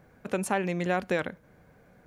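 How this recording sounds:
background noise floor −60 dBFS
spectral slope −5.5 dB per octave

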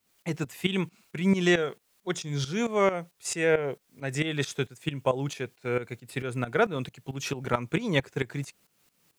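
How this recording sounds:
a quantiser's noise floor 12 bits, dither triangular
tremolo saw up 4.5 Hz, depth 80%

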